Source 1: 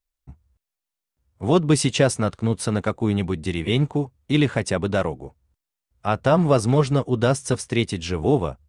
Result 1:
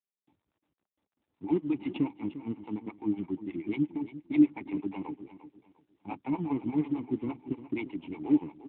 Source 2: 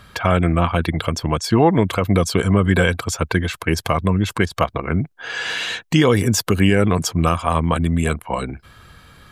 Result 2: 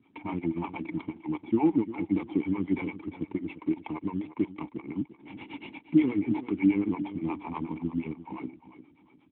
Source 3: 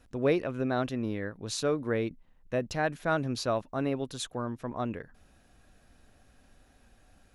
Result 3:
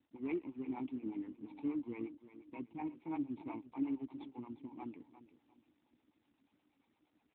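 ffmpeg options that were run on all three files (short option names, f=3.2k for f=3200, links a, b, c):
-filter_complex "[0:a]acrossover=split=480[a][b];[a]aeval=exprs='val(0)*(1-1/2+1/2*cos(2*PI*8.4*n/s))':c=same[c];[b]aeval=exprs='val(0)*(1-1/2-1/2*cos(2*PI*8.4*n/s))':c=same[d];[c][d]amix=inputs=2:normalize=0,asplit=2[e][f];[f]acrusher=samples=28:mix=1:aa=0.000001,volume=-5dB[g];[e][g]amix=inputs=2:normalize=0,asplit=3[h][i][j];[h]bandpass=f=300:t=q:w=8,volume=0dB[k];[i]bandpass=f=870:t=q:w=8,volume=-6dB[l];[j]bandpass=f=2.24k:t=q:w=8,volume=-9dB[m];[k][l][m]amix=inputs=3:normalize=0,aecho=1:1:350|700|1050:0.211|0.0613|0.0178,volume=1.5dB" -ar 8000 -c:a libopencore_amrnb -b:a 12200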